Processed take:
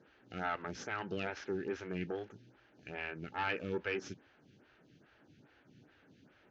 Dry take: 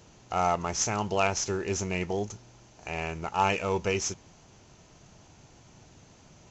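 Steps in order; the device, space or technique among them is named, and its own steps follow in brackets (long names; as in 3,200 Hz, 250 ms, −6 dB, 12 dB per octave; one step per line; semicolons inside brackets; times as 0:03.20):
vibe pedal into a guitar amplifier (phaser with staggered stages 2.4 Hz; tube saturation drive 22 dB, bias 0.45; loudspeaker in its box 86–4,000 Hz, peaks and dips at 86 Hz −5 dB, 280 Hz +6 dB, 690 Hz −7 dB, 1,000 Hz −9 dB, 1,600 Hz +10 dB)
level −3 dB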